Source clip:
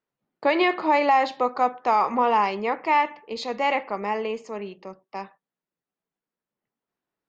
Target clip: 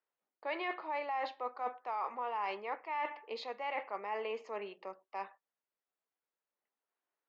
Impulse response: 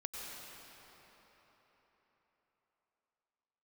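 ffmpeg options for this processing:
-af "highpass=510,lowpass=3.3k,areverse,acompressor=threshold=-32dB:ratio=6,areverse,volume=-3dB"

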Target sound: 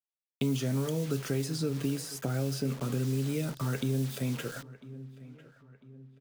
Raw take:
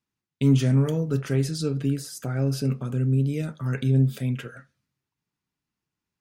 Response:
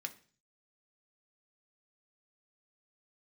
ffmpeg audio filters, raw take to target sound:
-filter_complex "[0:a]highpass=f=160:p=1,asplit=2[a][b];[b]acompressor=threshold=-35dB:ratio=6,volume=-1dB[c];[a][c]amix=inputs=2:normalize=0,acrusher=bits=6:mix=0:aa=0.000001,asplit=2[d][e];[e]adelay=999,lowpass=f=2.6k:p=1,volume=-22.5dB,asplit=2[f][g];[g]adelay=999,lowpass=f=2.6k:p=1,volume=0.46,asplit=2[h][i];[i]adelay=999,lowpass=f=2.6k:p=1,volume=0.46[j];[d][f][h][j]amix=inputs=4:normalize=0,acrossover=split=410|1400|2800[k][l][m][n];[k]acompressor=threshold=-30dB:ratio=4[o];[l]acompressor=threshold=-38dB:ratio=4[p];[m]acompressor=threshold=-56dB:ratio=4[q];[n]acompressor=threshold=-40dB:ratio=4[r];[o][p][q][r]amix=inputs=4:normalize=0"

